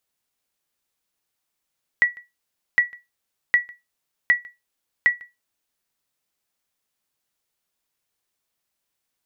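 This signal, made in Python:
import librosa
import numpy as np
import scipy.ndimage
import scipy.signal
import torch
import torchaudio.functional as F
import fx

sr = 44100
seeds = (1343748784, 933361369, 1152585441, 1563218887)

y = fx.sonar_ping(sr, hz=1940.0, decay_s=0.2, every_s=0.76, pings=5, echo_s=0.15, echo_db=-25.5, level_db=-8.0)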